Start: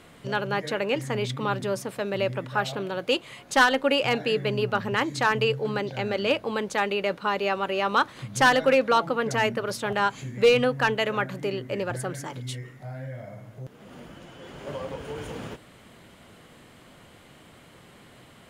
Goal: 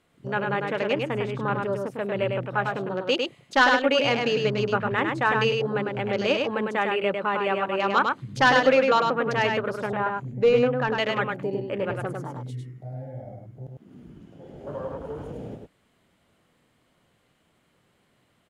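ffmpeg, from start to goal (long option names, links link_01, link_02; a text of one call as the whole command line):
ffmpeg -i in.wav -filter_complex "[0:a]afwtdn=0.0158,asettb=1/sr,asplit=3[link_01][link_02][link_03];[link_01]atrim=end=9.864[link_04];[link_02]atrim=start=9.86:end=10.93,asetpts=PTS-STARTPTS,afade=type=in:duration=0.004:curve=qsin,afade=type=out:start_time=1.066:duration=0.004:curve=qsin,equalizer=frequency=4800:width=0.36:gain=-11[link_05];[link_03]atrim=start=10.926[link_06];[link_04][link_05]acrossfade=duration=0.004:curve1=hsin:curve2=qsin[link_07];[link_07][link_06]acrossfade=duration=0.004:curve1=qsin:curve2=hsin,aecho=1:1:102:0.631" out.wav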